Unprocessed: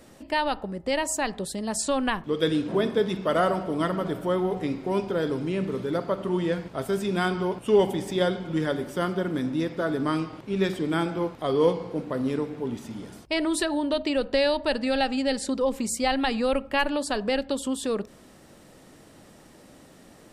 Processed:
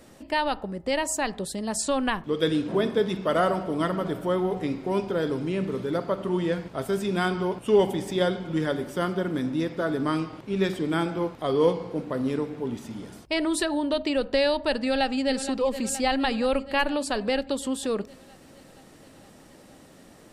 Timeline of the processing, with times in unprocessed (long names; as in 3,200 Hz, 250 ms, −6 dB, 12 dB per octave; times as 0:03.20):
0:14.81–0:15.34: delay throw 470 ms, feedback 70%, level −11.5 dB